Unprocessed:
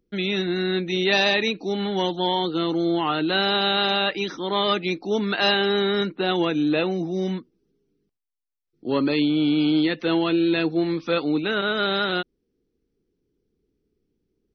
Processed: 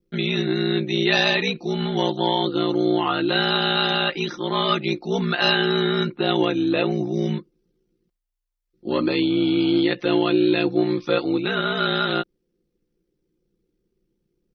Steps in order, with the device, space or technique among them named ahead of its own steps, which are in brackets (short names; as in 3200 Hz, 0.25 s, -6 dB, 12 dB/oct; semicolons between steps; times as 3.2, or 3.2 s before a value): ring-modulated robot voice (ring modulator 30 Hz; comb 5.7 ms, depth 62%); gain +2.5 dB